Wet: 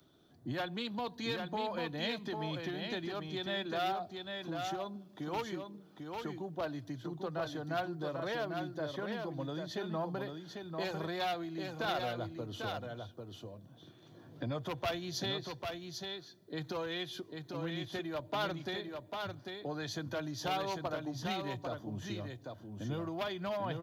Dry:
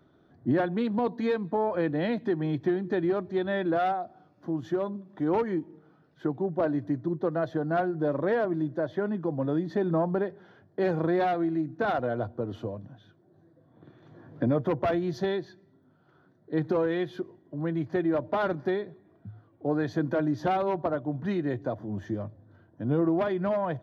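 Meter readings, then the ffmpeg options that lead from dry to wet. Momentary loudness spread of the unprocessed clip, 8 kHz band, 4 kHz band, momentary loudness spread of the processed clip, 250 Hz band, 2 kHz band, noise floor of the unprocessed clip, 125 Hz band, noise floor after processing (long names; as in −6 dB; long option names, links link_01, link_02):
9 LU, can't be measured, +7.5 dB, 9 LU, −12.0 dB, −4.0 dB, −63 dBFS, −9.0 dB, −59 dBFS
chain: -filter_complex "[0:a]acrossover=split=130|700[link_01][link_02][link_03];[link_02]acompressor=threshold=-37dB:ratio=5[link_04];[link_01][link_04][link_03]amix=inputs=3:normalize=0,aexciter=amount=4.6:drive=4.9:freq=2600,aecho=1:1:796:0.562,volume=-5.5dB"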